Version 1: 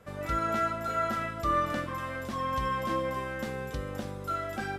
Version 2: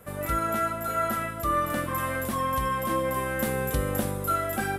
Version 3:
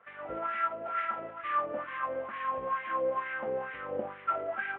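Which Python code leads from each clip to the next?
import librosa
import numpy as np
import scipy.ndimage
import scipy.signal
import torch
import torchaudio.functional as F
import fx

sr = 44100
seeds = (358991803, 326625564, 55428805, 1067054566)

y1 = fx.high_shelf_res(x, sr, hz=7800.0, db=12.5, q=1.5)
y1 = fx.rider(y1, sr, range_db=10, speed_s=0.5)
y1 = y1 * 10.0 ** (4.0 / 20.0)
y2 = fx.cvsd(y1, sr, bps=16000)
y2 = fx.wah_lfo(y2, sr, hz=2.2, low_hz=490.0, high_hz=2000.0, q=2.7)
y2 = y2 * 10.0 ** (1.0 / 20.0)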